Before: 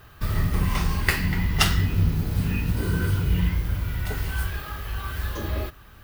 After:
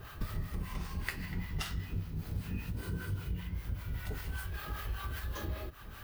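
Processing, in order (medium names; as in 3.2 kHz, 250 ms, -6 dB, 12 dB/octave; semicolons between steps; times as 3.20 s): compression 10:1, threshold -36 dBFS, peak gain reduction 21.5 dB; harmonic tremolo 5.1 Hz, depth 70%, crossover 610 Hz; trim +4.5 dB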